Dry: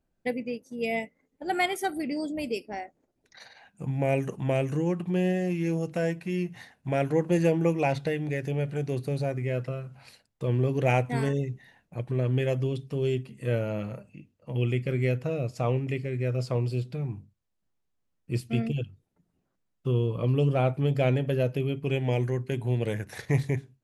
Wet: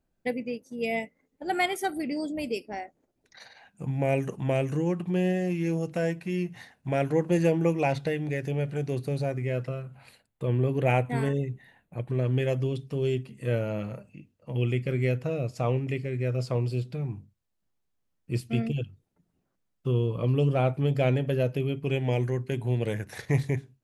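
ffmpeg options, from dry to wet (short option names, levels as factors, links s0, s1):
-filter_complex "[0:a]asettb=1/sr,asplit=3[s0][s1][s2];[s0]atrim=end=9.824[s3];[s1]atrim=start=9.82:end=12.1,asetpts=PTS-STARTPTS,afade=t=in:d=0.004:c=qsin,afade=t=out:st=2.276:d=0.004:c=qsin,equalizer=f=5500:t=o:w=0.54:g=-12[s4];[s2]atrim=start=12.096[s5];[s3][s4]acrossfade=d=0.004:c1=hsin:c2=qsin[s6];[s6][s5]acrossfade=d=0.004:c1=qsin:c2=hsin"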